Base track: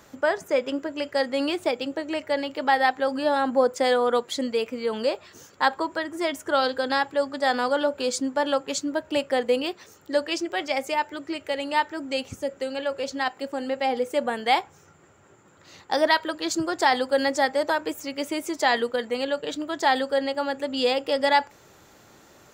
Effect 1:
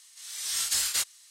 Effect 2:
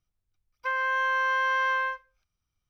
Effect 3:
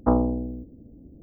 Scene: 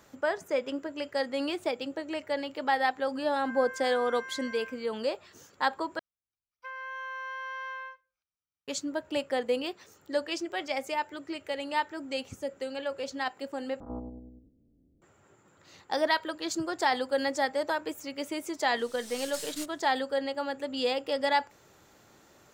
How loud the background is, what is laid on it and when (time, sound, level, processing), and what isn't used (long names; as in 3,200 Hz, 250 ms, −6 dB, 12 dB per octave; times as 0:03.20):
base track −6 dB
0:02.79: mix in 2 −5.5 dB + tuned comb filter 54 Hz, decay 0.33 s, harmonics odd, mix 100%
0:05.99: overwrite with 2 −12.5 dB + high-pass filter 270 Hz 6 dB per octave
0:13.80: overwrite with 3 −17 dB + spectrum averaged block by block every 100 ms
0:18.62: mix in 1 −10.5 dB + gain on one half-wave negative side −7 dB